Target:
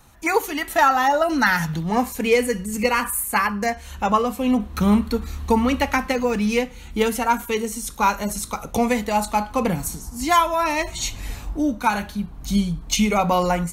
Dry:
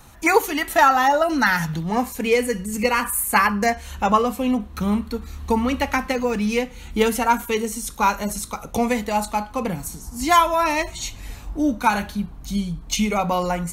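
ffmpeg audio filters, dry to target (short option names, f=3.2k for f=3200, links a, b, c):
-af "dynaudnorm=f=220:g=3:m=11.5dB,volume=-5dB"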